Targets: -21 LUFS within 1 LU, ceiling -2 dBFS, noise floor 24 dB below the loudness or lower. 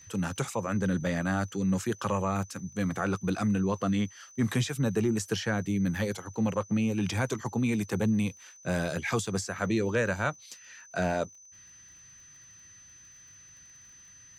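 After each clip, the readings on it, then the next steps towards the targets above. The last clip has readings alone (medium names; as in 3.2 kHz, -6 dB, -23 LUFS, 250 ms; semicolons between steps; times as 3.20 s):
tick rate 27 per s; steady tone 6.1 kHz; tone level -51 dBFS; loudness -30.0 LUFS; peak level -16.0 dBFS; loudness target -21.0 LUFS
-> de-click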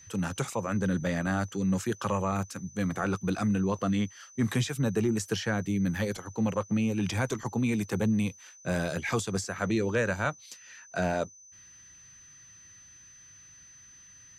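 tick rate 0 per s; steady tone 6.1 kHz; tone level -51 dBFS
-> band-stop 6.1 kHz, Q 30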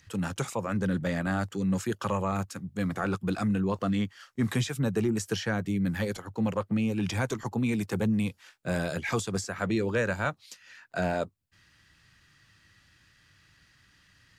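steady tone not found; loudness -30.0 LUFS; peak level -16.0 dBFS; loudness target -21.0 LUFS
-> trim +9 dB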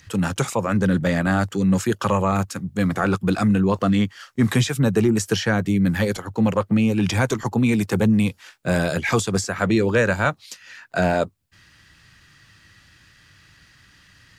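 loudness -21.0 LUFS; peak level -7.0 dBFS; noise floor -54 dBFS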